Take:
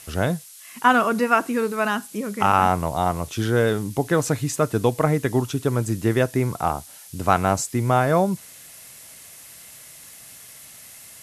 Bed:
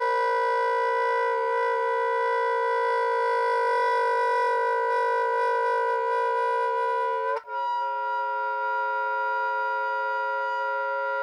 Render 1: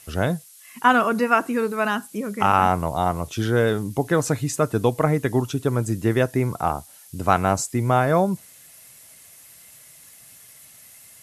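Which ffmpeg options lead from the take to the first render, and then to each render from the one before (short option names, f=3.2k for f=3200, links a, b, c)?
-af "afftdn=nr=6:nf=-44"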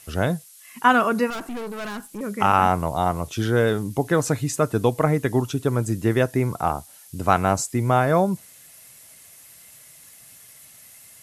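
-filter_complex "[0:a]asettb=1/sr,asplit=3[a][b][c];[a]atrim=end=1.304[d];[b]atrim=start=1.3:end=2.21,asetpts=PTS-STARTPTS,afade=t=in:d=0.004:c=qsin,afade=t=out:st=0.906:d=0.004:c=qsin,aeval=exprs='(tanh(28.2*val(0)+0.45)-tanh(0.45))/28.2':c=same[e];[c]atrim=start=2.206[f];[d][e]acrossfade=d=0.004:c1=hsin:c2=qsin[g];[g][f]acrossfade=d=0.004:c1=qsin:c2=hsin"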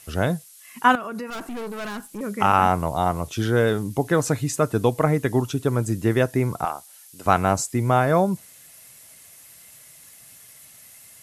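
-filter_complex "[0:a]asettb=1/sr,asplit=3[a][b][c];[a]atrim=end=0.954[d];[b]atrim=start=0.95:end=1.58,asetpts=PTS-STARTPTS,afade=t=in:d=0.004:c=qsin,afade=t=out:st=0.626:d=0.004:c=qsin,acompressor=threshold=-28dB:ratio=8:attack=3.2:release=140:knee=1:detection=peak[e];[c]atrim=start=1.576[f];[d][e]acrossfade=d=0.004:c1=hsin:c2=qsin[g];[g][f]acrossfade=d=0.004:c1=qsin:c2=hsin,asettb=1/sr,asplit=3[h][i][j];[h]atrim=end=6.654[k];[i]atrim=start=6.65:end=7.26,asetpts=PTS-STARTPTS,afade=t=in:d=0.004:c=qsin,afade=t=out:st=0.606:d=0.004:c=qsin,highpass=f=1.1k:p=1[l];[j]atrim=start=7.256[m];[k][l]acrossfade=d=0.004:c1=hsin:c2=qsin[n];[n][m]acrossfade=d=0.004:c1=qsin:c2=hsin"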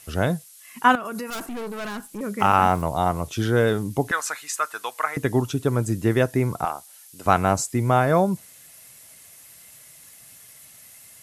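-filter_complex "[0:a]asettb=1/sr,asplit=3[a][b][c];[a]atrim=end=1.054[d];[b]atrim=start=1.05:end=1.46,asetpts=PTS-STARTPTS,afade=t=in:d=0.004:c=qsin,afade=t=out:st=0.406:d=0.004:c=qsin,highshelf=f=5.4k:g=11.5[e];[c]atrim=start=1.456[f];[d][e]acrossfade=d=0.004:c1=hsin:c2=qsin[g];[g][f]acrossfade=d=0.004:c1=qsin:c2=hsin,asettb=1/sr,asplit=3[h][i][j];[h]atrim=end=2.394[k];[i]atrim=start=2.39:end=2.82,asetpts=PTS-STARTPTS,afade=t=in:d=0.004:c=qsin,afade=t=out:st=0.426:d=0.004:c=qsin,aeval=exprs='val(0)*gte(abs(val(0)),0.0112)':c=same[l];[j]atrim=start=2.816[m];[k][l]acrossfade=d=0.004:c1=hsin:c2=qsin[n];[n][m]acrossfade=d=0.004:c1=qsin:c2=hsin,asettb=1/sr,asplit=3[o][p][q];[o]atrim=end=4.114[r];[p]atrim=start=4.11:end=5.17,asetpts=PTS-STARTPTS,afade=t=in:d=0.004:c=qsin,afade=t=out:st=1.056:d=0.004:c=qsin,highpass=f=1.3k:t=q:w=1.6[s];[q]atrim=start=5.166[t];[r][s]acrossfade=d=0.004:c1=hsin:c2=qsin[u];[u][t]acrossfade=d=0.004:c1=qsin:c2=hsin"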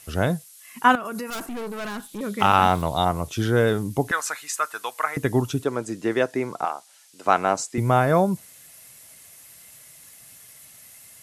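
-filter_complex "[0:a]asettb=1/sr,asplit=3[a][b][c];[a]atrim=end=1.994[d];[b]atrim=start=1.99:end=3.05,asetpts=PTS-STARTPTS,afade=t=in:d=0.004:c=qsin,afade=t=out:st=1.056:d=0.004:c=qsin,equalizer=f=3.6k:t=o:w=0.49:g=13[e];[c]atrim=start=3.046[f];[d][e]acrossfade=d=0.004:c1=hsin:c2=qsin[g];[g][f]acrossfade=d=0.004:c1=qsin:c2=hsin,asettb=1/sr,asplit=3[h][i][j];[h]atrim=end=5.644[k];[i]atrim=start=5.64:end=7.78,asetpts=PTS-STARTPTS,afade=t=in:d=0.004:c=qsin,afade=t=out:st=2.136:d=0.004:c=qsin,highpass=290,lowpass=7.2k[l];[j]atrim=start=7.776[m];[k][l]acrossfade=d=0.004:c1=hsin:c2=qsin[n];[n][m]acrossfade=d=0.004:c1=qsin:c2=hsin"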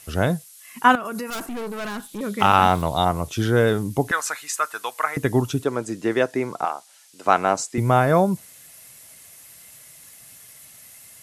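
-af "volume=1.5dB"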